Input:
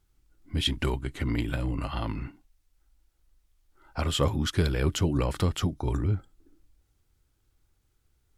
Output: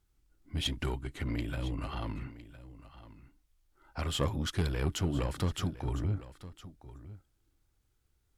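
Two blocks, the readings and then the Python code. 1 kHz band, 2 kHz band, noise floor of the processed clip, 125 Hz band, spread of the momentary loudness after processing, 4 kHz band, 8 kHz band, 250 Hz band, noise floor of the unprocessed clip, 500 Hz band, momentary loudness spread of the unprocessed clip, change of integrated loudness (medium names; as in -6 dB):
-5.5 dB, -5.5 dB, -74 dBFS, -5.5 dB, 20 LU, -5.5 dB, -5.0 dB, -6.0 dB, -71 dBFS, -6.5 dB, 8 LU, -5.5 dB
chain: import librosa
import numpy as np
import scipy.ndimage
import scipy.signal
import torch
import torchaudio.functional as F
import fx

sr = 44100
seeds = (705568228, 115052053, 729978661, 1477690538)

y = fx.diode_clip(x, sr, knee_db=-23.0)
y = y + 10.0 ** (-16.0 / 20.0) * np.pad(y, (int(1009 * sr / 1000.0), 0))[:len(y)]
y = F.gain(torch.from_numpy(y), -4.0).numpy()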